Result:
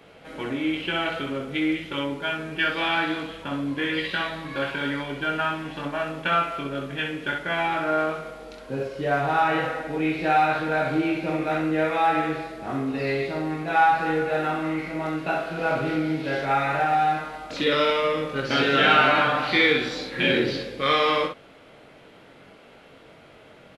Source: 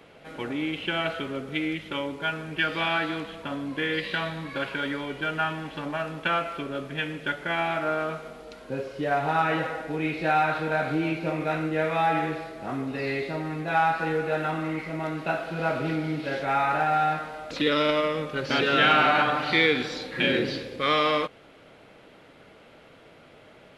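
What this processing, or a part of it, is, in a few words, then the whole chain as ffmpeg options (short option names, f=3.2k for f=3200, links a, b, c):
slapback doubling: -filter_complex "[0:a]asplit=3[a][b][c];[b]adelay=22,volume=-4.5dB[d];[c]adelay=64,volume=-5dB[e];[a][d][e]amix=inputs=3:normalize=0"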